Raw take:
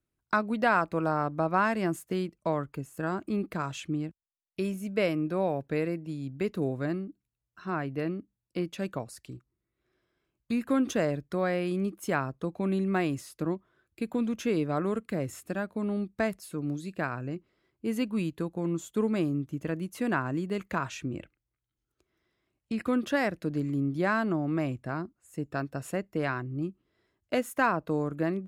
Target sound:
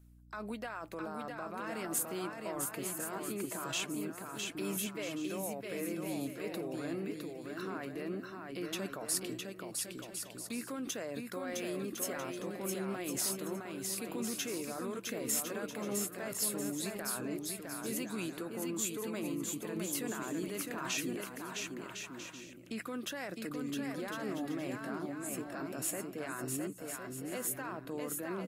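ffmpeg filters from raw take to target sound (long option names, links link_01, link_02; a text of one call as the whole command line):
ffmpeg -i in.wav -filter_complex "[0:a]highpass=280,highshelf=frequency=4000:gain=-3,areverse,acompressor=threshold=-38dB:ratio=5,areverse,alimiter=level_in=16.5dB:limit=-24dB:level=0:latency=1:release=47,volume=-16.5dB,crystalizer=i=5.5:c=0,aeval=exprs='val(0)+0.000562*(sin(2*PI*60*n/s)+sin(2*PI*2*60*n/s)/2+sin(2*PI*3*60*n/s)/3+sin(2*PI*4*60*n/s)/4+sin(2*PI*5*60*n/s)/5)':channel_layout=same,asplit=2[link_01][link_02];[link_02]adynamicsmooth=sensitivity=7:basefreq=2700,volume=-1.5dB[link_03];[link_01][link_03]amix=inputs=2:normalize=0,aecho=1:1:660|1056|1294|1436|1522:0.631|0.398|0.251|0.158|0.1,volume=2dB" -ar 48000 -c:a libvorbis -b:a 48k out.ogg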